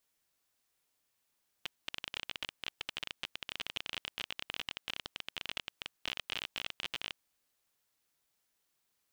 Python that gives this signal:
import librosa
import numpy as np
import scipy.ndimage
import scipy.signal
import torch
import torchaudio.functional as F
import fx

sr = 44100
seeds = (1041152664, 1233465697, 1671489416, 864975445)

y = fx.geiger_clicks(sr, seeds[0], length_s=5.52, per_s=27.0, level_db=-20.0)